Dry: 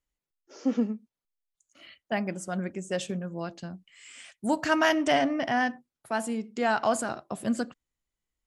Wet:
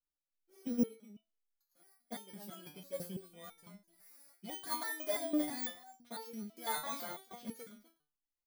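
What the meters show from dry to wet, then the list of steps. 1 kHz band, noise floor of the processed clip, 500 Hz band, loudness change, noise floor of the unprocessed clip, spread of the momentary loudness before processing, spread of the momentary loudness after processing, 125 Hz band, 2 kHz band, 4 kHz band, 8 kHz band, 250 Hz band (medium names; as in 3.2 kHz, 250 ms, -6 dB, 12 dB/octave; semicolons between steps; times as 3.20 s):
-15.5 dB, under -85 dBFS, -14.5 dB, -11.0 dB, under -85 dBFS, 18 LU, 20 LU, -15.0 dB, -17.0 dB, -10.0 dB, -6.0 dB, -11.0 dB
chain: bit-reversed sample order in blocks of 16 samples; delay 251 ms -18 dB; resonator arpeggio 6 Hz 150–450 Hz; trim +1 dB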